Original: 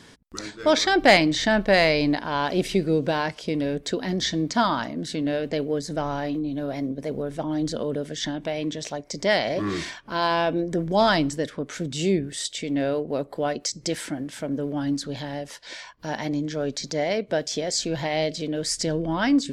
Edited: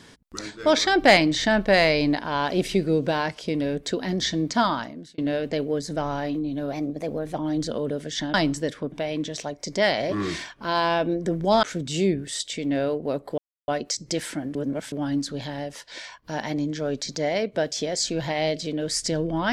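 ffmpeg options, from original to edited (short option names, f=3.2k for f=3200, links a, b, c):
-filter_complex "[0:a]asplit=10[a][b][c][d][e][f][g][h][i][j];[a]atrim=end=5.18,asetpts=PTS-STARTPTS,afade=t=out:st=4.66:d=0.52[k];[b]atrim=start=5.18:end=6.724,asetpts=PTS-STARTPTS,afade=t=in:d=0.004:c=hsin[l];[c]atrim=start=6.72:end=7.4,asetpts=PTS-STARTPTS,asetrate=47628,aresample=44100[m];[d]atrim=start=7.396:end=8.392[n];[e]atrim=start=11.098:end=11.682[o];[f]atrim=start=8.388:end=11.102[p];[g]atrim=start=11.678:end=13.43,asetpts=PTS-STARTPTS,afade=t=out:st=1.748:d=0.004:c=hsin,apad=pad_dur=0.3[q];[h]atrim=start=13.43:end=14.302,asetpts=PTS-STARTPTS,afade=t=in:d=0.004:c=hsin[r];[i]atrim=start=14.298:end=14.672,asetpts=PTS-STARTPTS,areverse[s];[j]atrim=start=14.668[t];[k][l]concat=n=2:v=0:a=1[u];[u][m]acrossfade=d=0.004:c1=hsin:c2=hsin[v];[v][n]acrossfade=d=0.004:c1=hsin:c2=hsin[w];[w][o]acrossfade=d=0.004:c1=hsin:c2=hsin[x];[x][p]acrossfade=d=0.004:c1=hsin:c2=hsin[y];[q][r]concat=n=2:v=0:a=1[z];[y][z]acrossfade=d=0.004:c1=hsin:c2=hsin[aa];[aa][s]acrossfade=d=0.004:c1=hsin:c2=hsin[ab];[ab][t]acrossfade=d=0.004:c1=hsin:c2=hsin"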